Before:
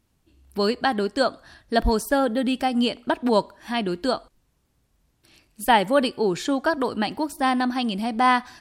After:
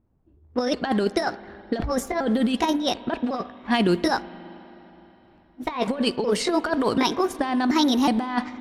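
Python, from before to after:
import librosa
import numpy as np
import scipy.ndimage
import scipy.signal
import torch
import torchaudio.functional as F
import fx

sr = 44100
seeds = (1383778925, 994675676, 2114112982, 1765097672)

y = fx.pitch_trill(x, sr, semitones=3.5, every_ms=367)
y = fx.leveller(y, sr, passes=1)
y = fx.over_compress(y, sr, threshold_db=-21.0, ratio=-0.5)
y = fx.env_lowpass(y, sr, base_hz=800.0, full_db=-17.5)
y = fx.rev_spring(y, sr, rt60_s=3.7, pass_ms=(40, 52), chirp_ms=30, drr_db=16.5)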